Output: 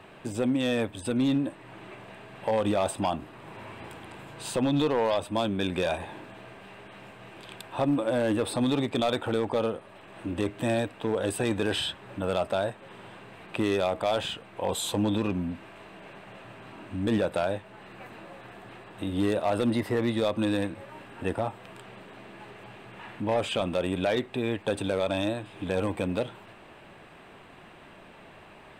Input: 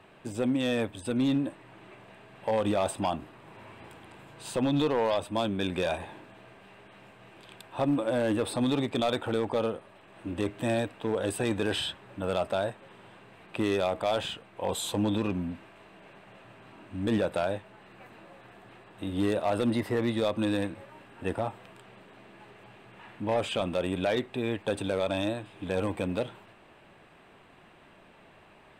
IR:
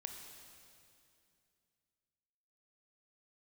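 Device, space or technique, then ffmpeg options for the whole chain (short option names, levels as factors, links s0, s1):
parallel compression: -filter_complex "[0:a]asplit=2[s0][s1];[s1]acompressor=threshold=0.00891:ratio=6,volume=0.944[s2];[s0][s2]amix=inputs=2:normalize=0"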